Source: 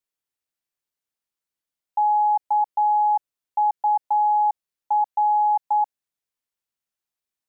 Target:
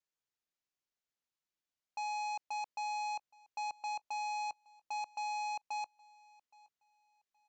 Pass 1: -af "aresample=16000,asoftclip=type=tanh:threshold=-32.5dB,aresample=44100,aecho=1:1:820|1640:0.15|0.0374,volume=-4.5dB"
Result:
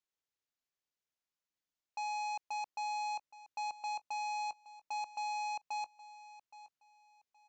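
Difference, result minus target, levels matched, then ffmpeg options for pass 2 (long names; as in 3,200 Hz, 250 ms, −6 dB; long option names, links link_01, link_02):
echo-to-direct +8 dB
-af "aresample=16000,asoftclip=type=tanh:threshold=-32.5dB,aresample=44100,aecho=1:1:820|1640:0.0596|0.0149,volume=-4.5dB"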